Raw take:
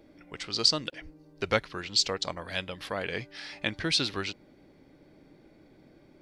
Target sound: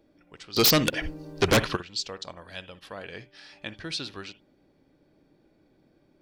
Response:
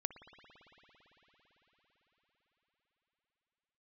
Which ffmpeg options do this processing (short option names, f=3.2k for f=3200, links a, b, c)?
-filter_complex "[0:a]bandreject=f=2.1k:w=9.7,asplit=3[a][b][c];[a]afade=t=out:st=0.56:d=0.02[d];[b]aeval=exprs='0.398*sin(PI/2*7.08*val(0)/0.398)':c=same,afade=t=in:st=0.56:d=0.02,afade=t=out:st=1.75:d=0.02[e];[c]afade=t=in:st=1.75:d=0.02[f];[d][e][f]amix=inputs=3:normalize=0,asettb=1/sr,asplit=3[g][h][i];[g]atrim=end=2.794[j];[h]atrim=start=2.79:end=3.33,asetpts=PTS-STARTPTS,afade=t=in:d=0.004:c=qsin,afade=t=out:st=0.536:d=0.004:c=qsin,agate=range=-33dB:threshold=-41dB:ratio=3:detection=peak[k];[i]atrim=start=3.326[l];[j][k]acrossfade=d=0.004:c1=hsin:c2=qsin[m];[m][l]acrossfade=d=0.004:c1=qsin:c2=hsin[n];[1:a]atrim=start_sample=2205,atrim=end_sample=3969[o];[n][o]afir=irnorm=-1:irlink=0,volume=-4.5dB"